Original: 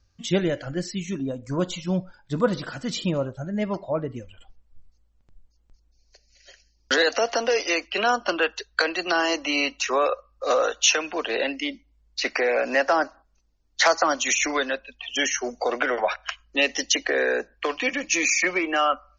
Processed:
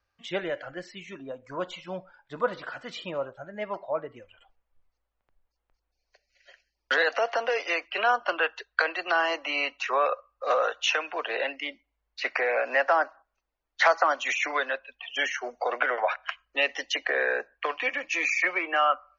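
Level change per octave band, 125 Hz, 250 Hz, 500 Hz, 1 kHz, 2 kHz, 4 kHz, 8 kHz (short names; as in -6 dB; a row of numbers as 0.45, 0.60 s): under -15 dB, -14.0 dB, -4.5 dB, -1.0 dB, -1.5 dB, -7.0 dB, n/a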